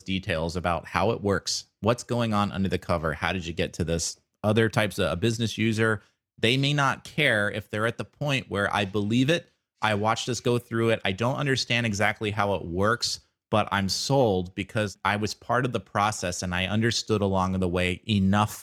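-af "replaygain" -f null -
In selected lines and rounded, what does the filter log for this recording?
track_gain = +6.4 dB
track_peak = 0.422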